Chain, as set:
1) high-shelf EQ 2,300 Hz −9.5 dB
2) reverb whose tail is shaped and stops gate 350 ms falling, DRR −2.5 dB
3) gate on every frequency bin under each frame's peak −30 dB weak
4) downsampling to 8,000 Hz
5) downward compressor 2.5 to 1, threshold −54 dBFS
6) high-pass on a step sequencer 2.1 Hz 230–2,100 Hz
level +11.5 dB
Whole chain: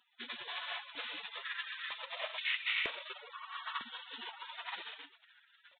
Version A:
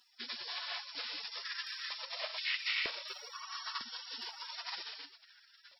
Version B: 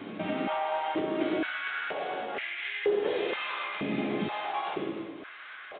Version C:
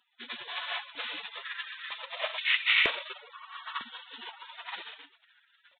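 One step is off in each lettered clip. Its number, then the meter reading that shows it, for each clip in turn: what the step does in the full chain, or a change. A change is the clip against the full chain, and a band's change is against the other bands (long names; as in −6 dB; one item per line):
4, 4 kHz band +4.0 dB
3, 250 Hz band +19.5 dB
5, change in momentary loudness spread +8 LU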